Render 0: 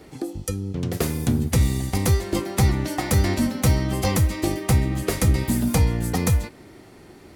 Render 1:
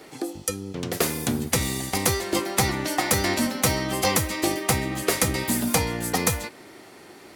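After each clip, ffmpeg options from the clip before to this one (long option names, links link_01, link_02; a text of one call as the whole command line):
ffmpeg -i in.wav -af "highpass=frequency=570:poles=1,volume=5dB" out.wav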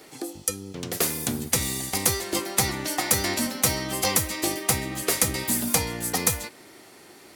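ffmpeg -i in.wav -af "highshelf=frequency=4100:gain=7.5,volume=-4dB" out.wav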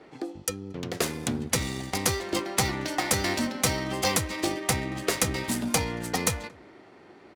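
ffmpeg -i in.wav -af "aecho=1:1:228:0.0631,adynamicsmooth=sensitivity=4.5:basefreq=2100" out.wav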